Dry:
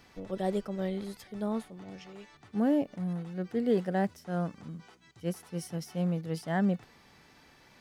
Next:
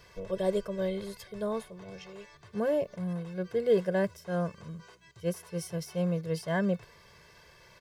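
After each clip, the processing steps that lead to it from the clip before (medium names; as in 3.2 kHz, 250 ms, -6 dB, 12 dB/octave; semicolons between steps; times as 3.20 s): comb 1.9 ms, depth 92%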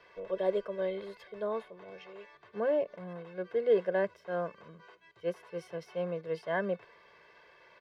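three-band isolator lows -19 dB, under 270 Hz, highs -23 dB, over 3.5 kHz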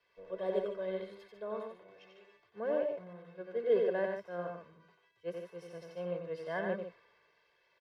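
loudspeakers at several distances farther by 31 m -4 dB, 51 m -7 dB; three bands expanded up and down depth 40%; trim -6 dB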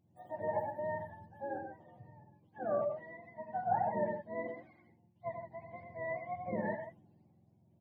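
spectrum inverted on a logarithmic axis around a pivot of 590 Hz; trim +1 dB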